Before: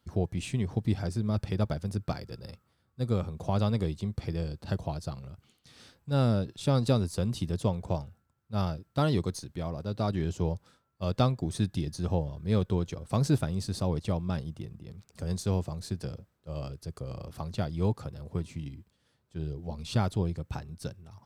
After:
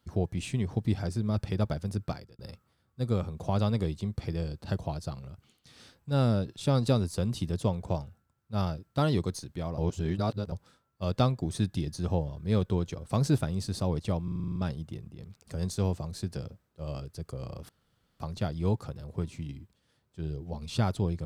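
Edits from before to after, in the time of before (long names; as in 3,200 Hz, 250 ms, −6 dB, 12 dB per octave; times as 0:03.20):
0:02.04–0:02.39: fade out
0:09.78–0:10.52: reverse
0:14.24: stutter 0.04 s, 9 plays
0:17.37: splice in room tone 0.51 s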